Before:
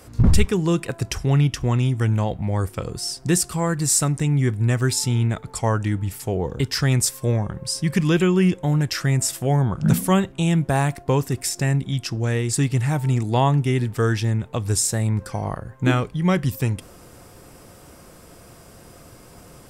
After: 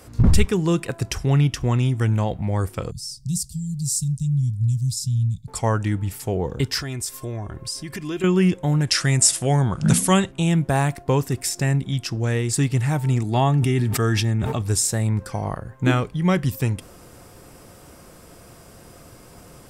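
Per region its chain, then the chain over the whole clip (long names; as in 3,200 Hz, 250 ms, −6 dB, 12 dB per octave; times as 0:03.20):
0:02.91–0:05.48: inverse Chebyshev band-stop filter 440–1,700 Hz, stop band 60 dB + high-shelf EQ 3,400 Hz −6 dB
0:06.81–0:08.24: downward compressor 3 to 1, threshold −28 dBFS + comb filter 2.9 ms, depth 55%
0:08.87–0:10.31: high-shelf EQ 2,200 Hz +8.5 dB + bad sample-rate conversion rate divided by 2×, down none, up filtered
0:13.24–0:14.62: notch comb filter 500 Hz + level that may fall only so fast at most 20 dB per second
whole clip: no processing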